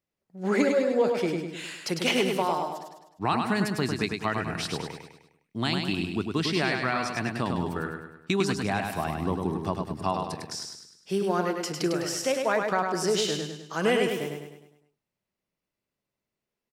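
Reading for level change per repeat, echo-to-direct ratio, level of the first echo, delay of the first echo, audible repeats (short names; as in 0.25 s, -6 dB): -6.5 dB, -3.5 dB, -4.5 dB, 0.102 s, 5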